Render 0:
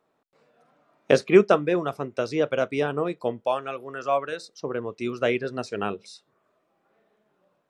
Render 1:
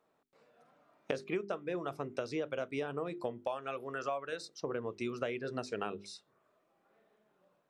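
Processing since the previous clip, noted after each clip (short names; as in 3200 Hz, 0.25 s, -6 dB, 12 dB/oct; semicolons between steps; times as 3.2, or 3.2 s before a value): notches 50/100/150/200/250/300/350/400 Hz; compressor 10:1, threshold -29 dBFS, peak gain reduction 19.5 dB; gain -3.5 dB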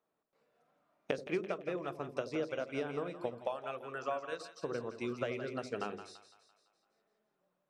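on a send: split-band echo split 610 Hz, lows 82 ms, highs 0.169 s, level -7.5 dB; on the sum: upward expander 1.5:1, over -51 dBFS; gain +1 dB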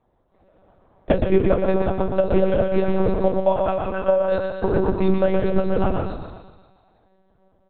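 feedback echo 0.125 s, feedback 49%, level -4.5 dB; reverb RT60 0.20 s, pre-delay 3 ms, DRR 3.5 dB; monotone LPC vocoder at 8 kHz 190 Hz; gain +6.5 dB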